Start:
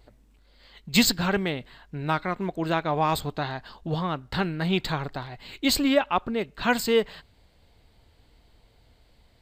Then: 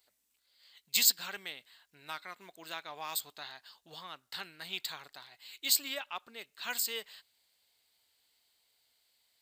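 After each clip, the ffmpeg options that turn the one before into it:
-af "aderivative"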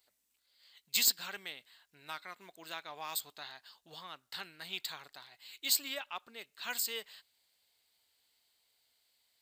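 -af "asoftclip=type=tanh:threshold=-12.5dB,volume=-1.5dB"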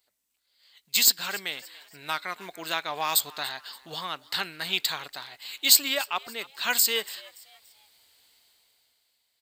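-filter_complex "[0:a]dynaudnorm=f=230:g=9:m=14dB,asplit=4[a][b][c][d];[b]adelay=287,afreqshift=130,volume=-21dB[e];[c]adelay=574,afreqshift=260,volume=-29dB[f];[d]adelay=861,afreqshift=390,volume=-36.9dB[g];[a][e][f][g]amix=inputs=4:normalize=0"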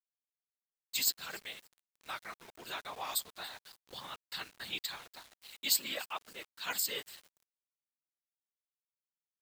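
-af "agate=range=-33dB:threshold=-48dB:ratio=3:detection=peak,afftfilt=real='hypot(re,im)*cos(2*PI*random(0))':imag='hypot(re,im)*sin(2*PI*random(1))':win_size=512:overlap=0.75,aeval=exprs='val(0)*gte(abs(val(0)),0.00596)':c=same,volume=-5.5dB"

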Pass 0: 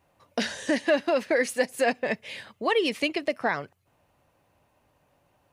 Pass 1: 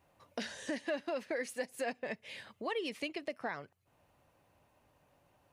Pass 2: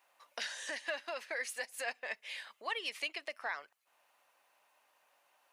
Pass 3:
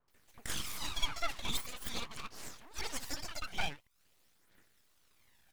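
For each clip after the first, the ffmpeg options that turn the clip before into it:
-af "acompressor=threshold=-49dB:ratio=1.5,volume=-3dB"
-af "highpass=990,volume=4dB"
-filter_complex "[0:a]aphaser=in_gain=1:out_gain=1:delay=1.5:decay=0.76:speed=0.45:type=triangular,acrossover=split=500|2000[a][b][c];[c]adelay=80[d];[b]adelay=140[e];[a][e][d]amix=inputs=3:normalize=0,aeval=exprs='abs(val(0))':c=same,volume=3dB"

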